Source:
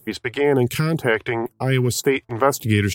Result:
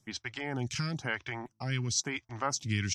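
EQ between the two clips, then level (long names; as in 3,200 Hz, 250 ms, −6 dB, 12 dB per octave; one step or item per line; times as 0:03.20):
transistor ladder low-pass 6,200 Hz, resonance 75%
parametric band 430 Hz −14 dB 0.7 octaves
0.0 dB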